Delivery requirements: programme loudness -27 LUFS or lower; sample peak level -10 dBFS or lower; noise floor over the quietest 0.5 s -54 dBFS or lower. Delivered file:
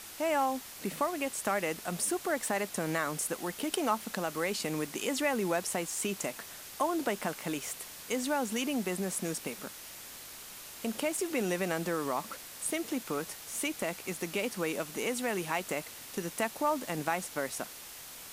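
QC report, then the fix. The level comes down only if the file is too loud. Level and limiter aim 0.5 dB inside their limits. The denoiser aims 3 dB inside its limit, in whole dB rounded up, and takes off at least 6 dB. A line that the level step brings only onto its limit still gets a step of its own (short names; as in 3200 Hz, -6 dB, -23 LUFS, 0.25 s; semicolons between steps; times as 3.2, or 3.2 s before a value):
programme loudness -33.5 LUFS: OK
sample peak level -13.5 dBFS: OK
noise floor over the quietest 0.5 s -47 dBFS: fail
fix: denoiser 10 dB, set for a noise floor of -47 dBFS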